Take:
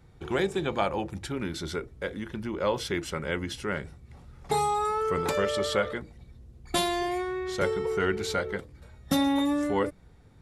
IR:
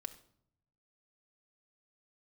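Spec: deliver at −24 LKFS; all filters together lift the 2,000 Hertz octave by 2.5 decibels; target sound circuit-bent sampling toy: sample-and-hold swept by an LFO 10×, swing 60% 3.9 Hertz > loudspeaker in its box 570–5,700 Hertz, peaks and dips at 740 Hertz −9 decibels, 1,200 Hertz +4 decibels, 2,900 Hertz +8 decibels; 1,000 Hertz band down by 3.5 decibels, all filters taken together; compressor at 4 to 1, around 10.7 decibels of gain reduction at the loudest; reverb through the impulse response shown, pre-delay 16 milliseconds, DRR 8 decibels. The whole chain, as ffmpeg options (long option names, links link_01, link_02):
-filter_complex "[0:a]equalizer=frequency=1000:width_type=o:gain=-5.5,equalizer=frequency=2000:width_type=o:gain=3.5,acompressor=threshold=-35dB:ratio=4,asplit=2[link_01][link_02];[1:a]atrim=start_sample=2205,adelay=16[link_03];[link_02][link_03]afir=irnorm=-1:irlink=0,volume=-5dB[link_04];[link_01][link_04]amix=inputs=2:normalize=0,acrusher=samples=10:mix=1:aa=0.000001:lfo=1:lforange=6:lforate=3.9,highpass=570,equalizer=frequency=740:width_type=q:width=4:gain=-9,equalizer=frequency=1200:width_type=q:width=4:gain=4,equalizer=frequency=2900:width_type=q:width=4:gain=8,lowpass=frequency=5700:width=0.5412,lowpass=frequency=5700:width=1.3066,volume=15.5dB"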